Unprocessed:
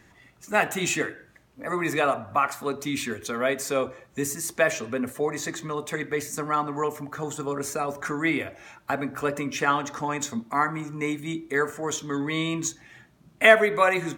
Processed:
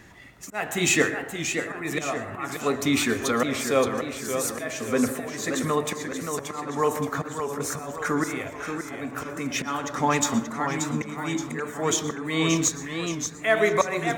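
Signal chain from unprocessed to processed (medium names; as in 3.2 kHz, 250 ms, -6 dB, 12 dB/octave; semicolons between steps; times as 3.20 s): slow attack 439 ms; plate-style reverb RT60 0.7 s, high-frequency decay 0.3×, pre-delay 105 ms, DRR 12 dB; modulated delay 577 ms, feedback 49%, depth 120 cents, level -7 dB; trim +6 dB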